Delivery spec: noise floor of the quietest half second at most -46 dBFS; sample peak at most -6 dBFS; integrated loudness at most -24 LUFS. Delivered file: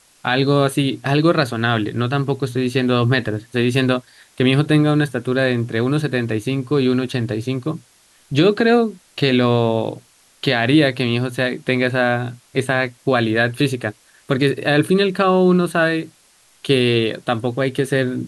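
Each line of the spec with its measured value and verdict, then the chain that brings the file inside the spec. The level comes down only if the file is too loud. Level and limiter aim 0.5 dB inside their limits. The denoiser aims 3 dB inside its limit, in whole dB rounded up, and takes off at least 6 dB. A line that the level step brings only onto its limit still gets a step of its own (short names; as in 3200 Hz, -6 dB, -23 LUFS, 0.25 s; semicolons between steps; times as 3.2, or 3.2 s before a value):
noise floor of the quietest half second -54 dBFS: OK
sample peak -4.5 dBFS: fail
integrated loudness -18.5 LUFS: fail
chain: gain -6 dB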